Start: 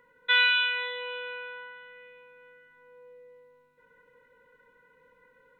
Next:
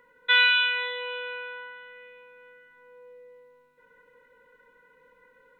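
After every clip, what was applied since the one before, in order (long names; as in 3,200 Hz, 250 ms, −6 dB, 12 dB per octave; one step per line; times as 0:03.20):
parametric band 110 Hz −7 dB 1.2 octaves
level +2.5 dB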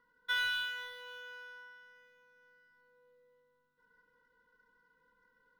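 running median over 9 samples
phaser with its sweep stopped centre 2,300 Hz, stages 6
convolution reverb, pre-delay 3 ms, DRR 13 dB
level −8.5 dB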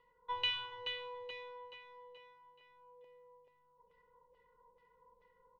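phaser with its sweep stopped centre 630 Hz, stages 4
auto-filter low-pass saw down 2.3 Hz 660–2,800 Hz
on a send: repeating echo 428 ms, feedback 43%, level −9 dB
on the sum: level +7 dB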